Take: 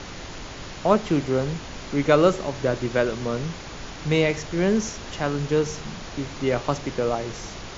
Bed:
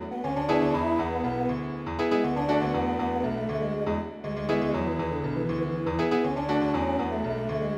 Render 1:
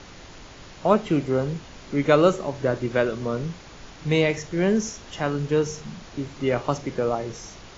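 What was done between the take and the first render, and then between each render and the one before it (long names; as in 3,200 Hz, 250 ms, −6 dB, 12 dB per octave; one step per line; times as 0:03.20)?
noise reduction from a noise print 7 dB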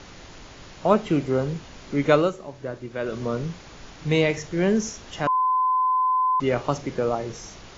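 0:02.14–0:03.16: duck −9 dB, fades 0.17 s
0:05.27–0:06.40: beep over 1,020 Hz −18 dBFS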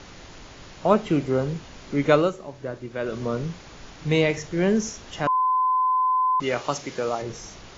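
0:06.42–0:07.22: spectral tilt +2.5 dB per octave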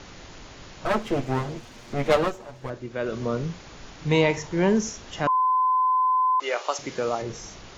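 0:00.85–0:02.70: lower of the sound and its delayed copy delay 8.5 ms
0:04.10–0:04.79: parametric band 940 Hz +11.5 dB 0.28 octaves
0:05.29–0:06.79: high-pass filter 430 Hz 24 dB per octave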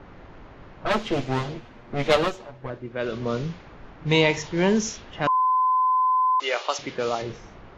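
low-pass that shuts in the quiet parts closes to 1,300 Hz, open at −19 dBFS
dynamic equaliser 3,500 Hz, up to +7 dB, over −46 dBFS, Q 1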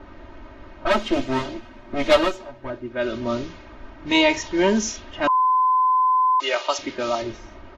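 comb filter 3.2 ms, depth 95%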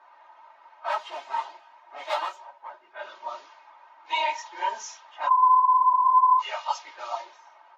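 random phases in long frames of 50 ms
four-pole ladder high-pass 810 Hz, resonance 70%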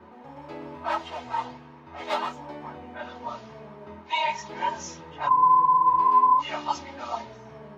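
mix in bed −16 dB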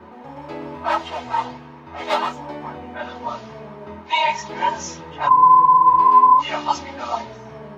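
level +7 dB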